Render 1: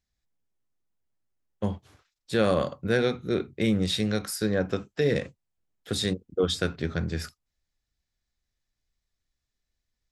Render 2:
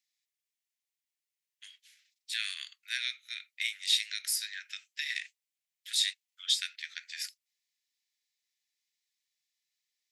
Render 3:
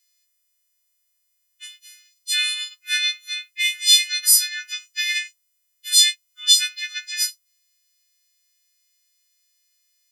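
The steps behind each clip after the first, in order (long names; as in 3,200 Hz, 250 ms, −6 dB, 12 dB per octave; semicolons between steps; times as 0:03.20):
Butterworth high-pass 1,900 Hz 48 dB per octave; level +3 dB
every partial snapped to a pitch grid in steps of 3 semitones; level +6 dB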